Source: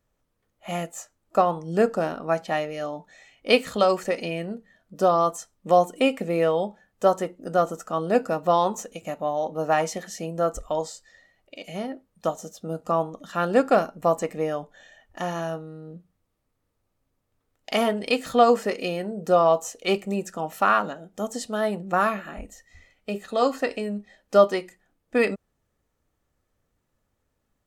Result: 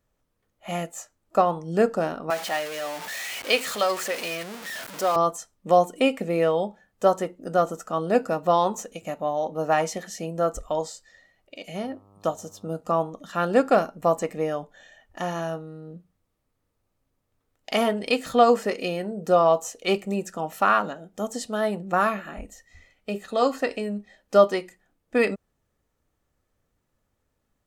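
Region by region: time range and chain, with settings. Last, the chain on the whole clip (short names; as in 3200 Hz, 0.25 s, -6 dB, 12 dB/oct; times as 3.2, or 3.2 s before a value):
2.3–5.16 zero-crossing step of -27 dBFS + HPF 920 Hz 6 dB/oct
11.83–12.69 notch 2000 Hz, Q 13 + buzz 100 Hz, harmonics 13, -56 dBFS
whole clip: dry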